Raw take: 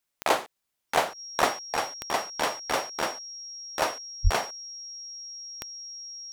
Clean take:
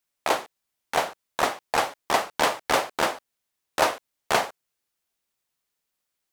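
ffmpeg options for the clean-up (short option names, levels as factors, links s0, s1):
-filter_complex "[0:a]adeclick=t=4,bandreject=f=5600:w=30,asplit=3[s0][s1][s2];[s0]afade=t=out:st=4.23:d=0.02[s3];[s1]highpass=f=140:w=0.5412,highpass=f=140:w=1.3066,afade=t=in:st=4.23:d=0.02,afade=t=out:st=4.35:d=0.02[s4];[s2]afade=t=in:st=4.35:d=0.02[s5];[s3][s4][s5]amix=inputs=3:normalize=0,asetnsamples=n=441:p=0,asendcmd='1.72 volume volume 5.5dB',volume=1"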